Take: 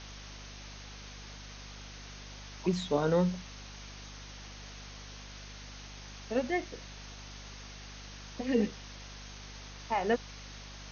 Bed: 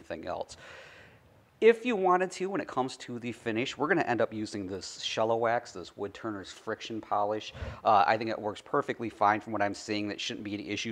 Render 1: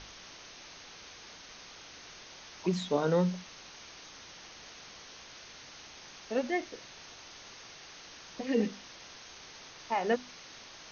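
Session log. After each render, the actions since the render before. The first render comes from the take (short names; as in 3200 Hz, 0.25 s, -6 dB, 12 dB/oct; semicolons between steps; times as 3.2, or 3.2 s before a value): notches 50/100/150/200/250 Hz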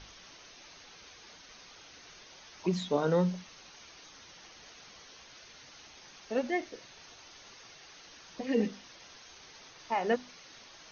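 denoiser 6 dB, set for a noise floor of -51 dBFS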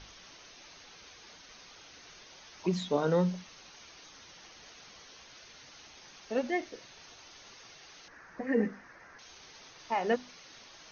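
8.08–9.19 resonant high shelf 2400 Hz -11 dB, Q 3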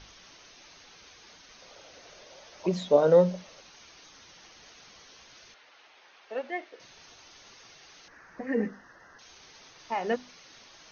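1.62–3.61 bell 570 Hz +13 dB 0.68 oct; 5.54–6.8 three-band isolator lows -22 dB, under 380 Hz, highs -18 dB, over 3600 Hz; 8.69–9.21 Butterworth band-stop 2300 Hz, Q 3.7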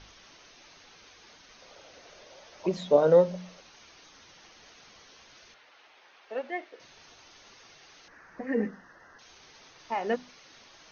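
high shelf 4800 Hz -4.5 dB; notches 60/120/180 Hz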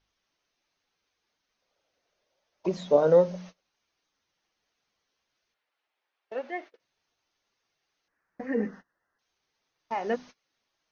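dynamic EQ 3300 Hz, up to -3 dB, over -49 dBFS, Q 0.97; gate -44 dBFS, range -26 dB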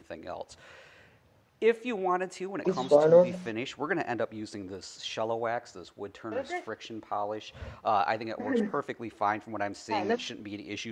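add bed -3.5 dB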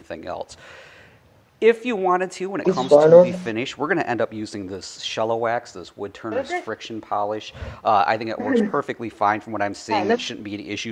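gain +9 dB; limiter -1 dBFS, peak gain reduction 1.5 dB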